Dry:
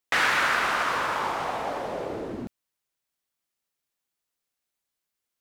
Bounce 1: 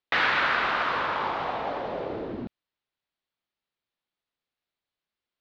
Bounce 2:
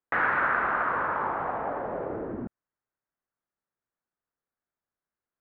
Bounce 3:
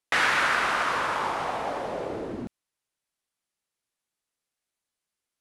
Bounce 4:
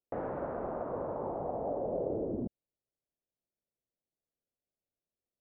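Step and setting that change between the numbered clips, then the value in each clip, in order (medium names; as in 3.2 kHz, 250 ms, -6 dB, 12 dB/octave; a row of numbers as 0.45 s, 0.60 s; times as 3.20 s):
Chebyshev low-pass, frequency: 4 kHz, 1.6 kHz, 11 kHz, 600 Hz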